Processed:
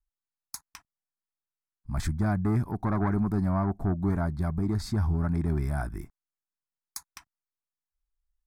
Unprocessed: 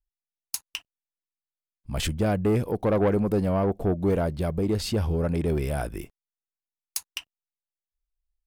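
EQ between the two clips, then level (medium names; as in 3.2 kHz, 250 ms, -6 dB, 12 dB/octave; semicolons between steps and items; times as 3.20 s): low-pass 3.5 kHz 6 dB/octave; static phaser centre 1.2 kHz, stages 4; +1.0 dB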